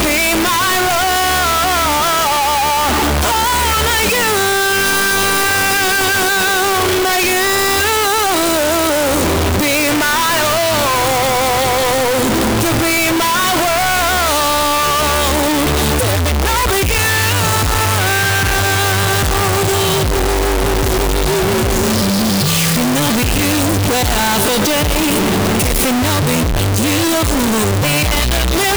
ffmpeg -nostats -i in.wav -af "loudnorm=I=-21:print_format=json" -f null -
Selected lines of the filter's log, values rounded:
"input_i" : "-13.3",
"input_tp" : "-7.3",
"input_lra" : "1.6",
"input_thresh" : "-23.3",